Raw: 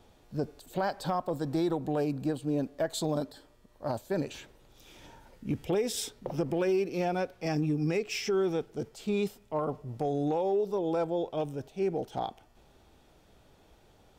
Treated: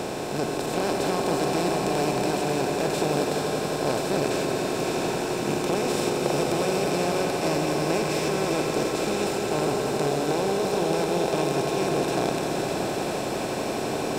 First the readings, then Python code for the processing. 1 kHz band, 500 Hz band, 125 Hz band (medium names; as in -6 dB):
+9.5 dB, +7.0 dB, +5.0 dB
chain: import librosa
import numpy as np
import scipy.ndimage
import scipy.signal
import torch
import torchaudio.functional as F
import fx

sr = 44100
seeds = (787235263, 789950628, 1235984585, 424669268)

y = fx.bin_compress(x, sr, power=0.2)
y = fx.echo_swell(y, sr, ms=86, loudest=5, wet_db=-10.0)
y = y * librosa.db_to_amplitude(-5.0)